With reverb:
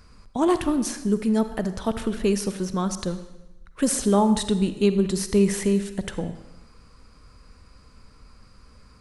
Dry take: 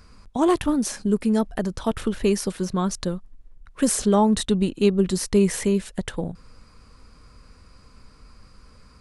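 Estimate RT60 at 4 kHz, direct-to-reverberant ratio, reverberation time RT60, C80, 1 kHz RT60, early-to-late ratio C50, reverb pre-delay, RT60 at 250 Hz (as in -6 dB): 0.95 s, 10.5 dB, 1.0 s, 13.0 dB, 1.0 s, 11.0 dB, 33 ms, 1.0 s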